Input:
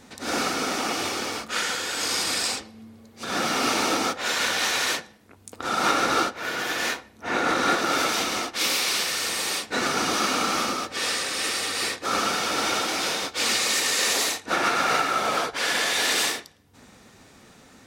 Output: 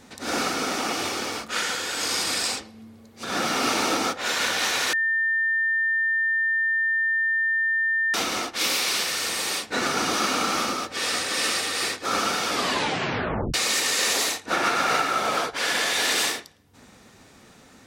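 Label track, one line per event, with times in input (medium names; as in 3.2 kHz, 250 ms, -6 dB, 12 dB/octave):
4.930000	8.140000	bleep 1.8 kHz -20 dBFS
10.780000	11.260000	echo throw 350 ms, feedback 45%, level -2.5 dB
12.490000	12.490000	tape stop 1.05 s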